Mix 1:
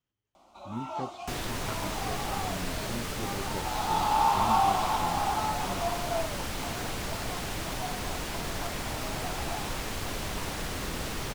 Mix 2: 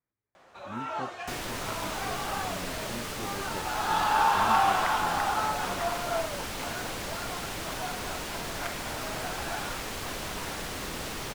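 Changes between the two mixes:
speech: add brick-wall FIR low-pass 2.5 kHz; first sound: remove static phaser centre 460 Hz, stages 6; master: add bass shelf 180 Hz -6.5 dB

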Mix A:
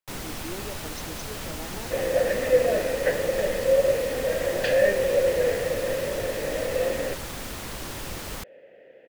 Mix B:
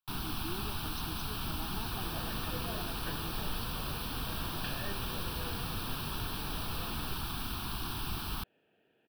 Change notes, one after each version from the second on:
second sound -8.5 dB; master: add static phaser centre 2 kHz, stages 6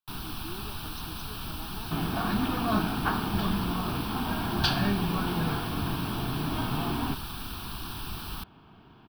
second sound: remove vowel filter e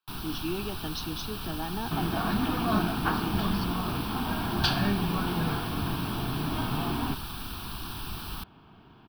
speech +11.0 dB

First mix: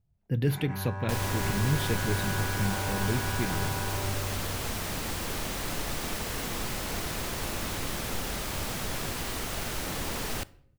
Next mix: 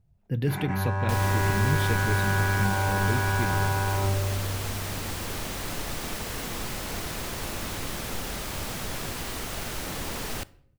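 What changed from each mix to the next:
first sound +8.0 dB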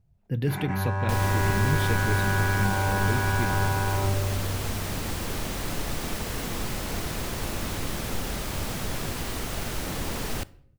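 second sound: add bass shelf 450 Hz +4.5 dB

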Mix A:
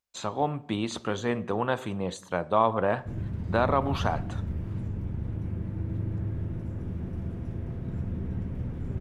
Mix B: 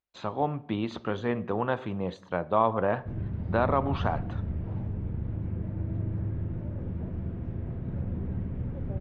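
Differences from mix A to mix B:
first sound: add high-order bell 690 Hz +15 dB 1.2 oct; master: add distance through air 250 m

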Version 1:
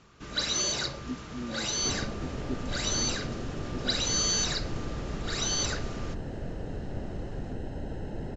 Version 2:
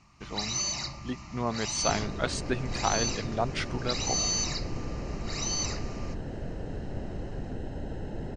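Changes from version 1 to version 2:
speech: remove Butterworth band-pass 280 Hz, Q 2.7; first sound: add static phaser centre 2.3 kHz, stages 8

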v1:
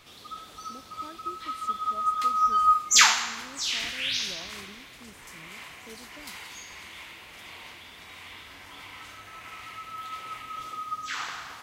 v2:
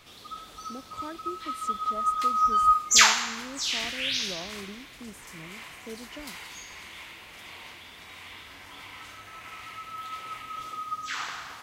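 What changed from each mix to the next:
speech +7.0 dB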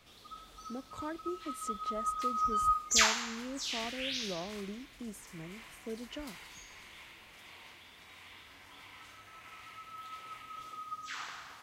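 background -8.5 dB

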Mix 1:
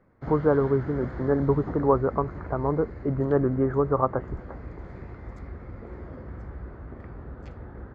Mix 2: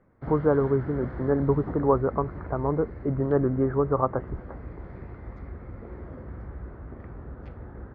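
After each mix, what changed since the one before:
master: add distance through air 220 m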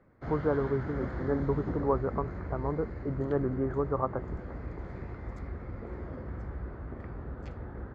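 speech -7.0 dB; master: remove distance through air 220 m

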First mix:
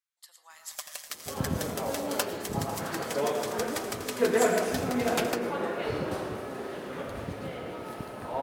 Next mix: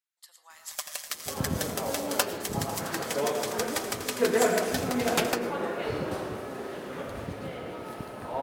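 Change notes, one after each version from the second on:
first sound +4.0 dB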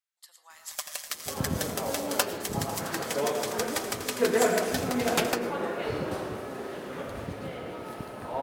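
no change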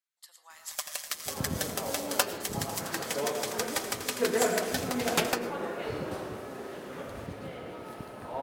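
second sound -3.5 dB

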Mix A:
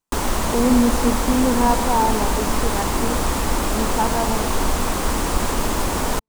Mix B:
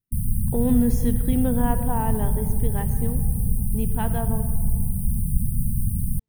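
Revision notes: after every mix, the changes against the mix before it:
background: add brick-wall FIR band-stop 240–8500 Hz; master: add graphic EQ 125/250/500/1000/8000 Hz +11/-5/-3/-10/-6 dB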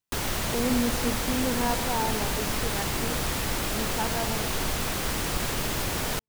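background: remove brick-wall FIR band-stop 240–8500 Hz; master: add bass shelf 270 Hz -12 dB

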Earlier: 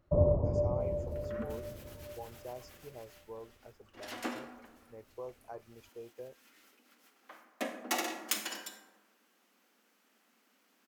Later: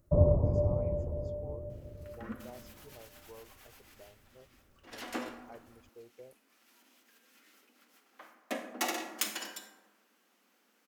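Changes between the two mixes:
speech -5.5 dB; first sound: add tone controls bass +4 dB, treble +14 dB; second sound: entry +0.90 s

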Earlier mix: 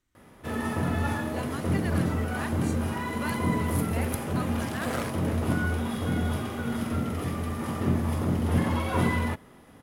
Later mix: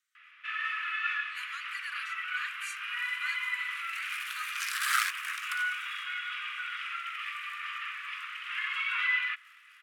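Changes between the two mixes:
first sound: add resonant low-pass 2.6 kHz, resonance Q 4.1; second sound +10.0 dB; master: add steep high-pass 1.2 kHz 72 dB/octave

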